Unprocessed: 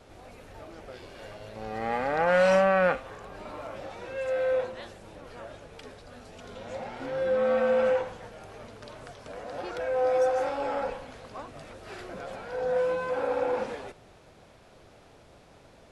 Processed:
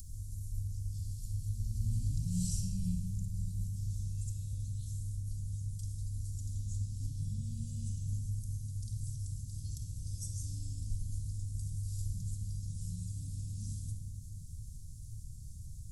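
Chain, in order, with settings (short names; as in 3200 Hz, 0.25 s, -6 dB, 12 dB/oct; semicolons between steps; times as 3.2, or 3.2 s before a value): inverse Chebyshev band-stop 440–2100 Hz, stop band 70 dB; upward compressor, threshold -55 dBFS; shoebox room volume 2500 m³, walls mixed, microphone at 2.2 m; gain +9.5 dB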